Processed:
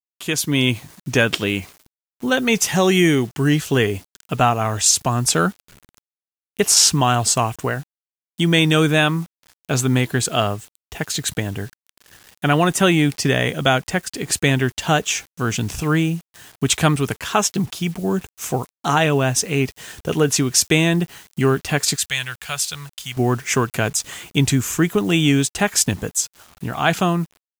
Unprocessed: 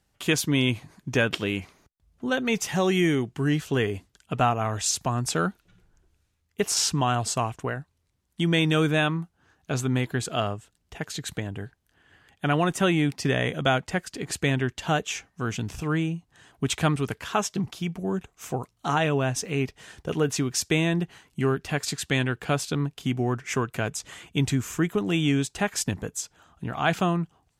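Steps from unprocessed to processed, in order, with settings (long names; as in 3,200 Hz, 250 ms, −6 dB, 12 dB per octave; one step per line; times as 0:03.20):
0:21.96–0:23.17: guitar amp tone stack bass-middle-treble 10-0-10
bit reduction 9 bits
automatic gain control gain up to 9 dB
high-shelf EQ 4,600 Hz +7 dB
level −1.5 dB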